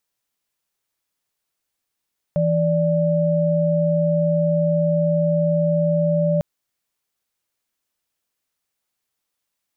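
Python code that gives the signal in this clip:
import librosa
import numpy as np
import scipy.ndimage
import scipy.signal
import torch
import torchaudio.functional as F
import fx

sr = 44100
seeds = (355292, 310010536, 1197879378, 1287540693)

y = fx.chord(sr, length_s=4.05, notes=(52, 74), wave='sine', level_db=-18.5)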